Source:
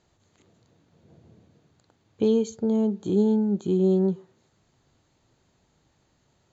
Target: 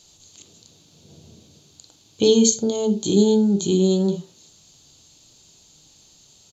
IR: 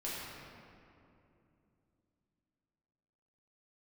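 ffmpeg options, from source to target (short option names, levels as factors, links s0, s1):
-filter_complex "[0:a]aexciter=amount=8.8:drive=5.9:freq=2800,asplit=2[s0][s1];[s1]tiltshelf=f=1200:g=5[s2];[1:a]atrim=start_sample=2205,atrim=end_sample=3528,asetrate=39249,aresample=44100[s3];[s2][s3]afir=irnorm=-1:irlink=0,volume=0.631[s4];[s0][s4]amix=inputs=2:normalize=0,aresample=32000,aresample=44100"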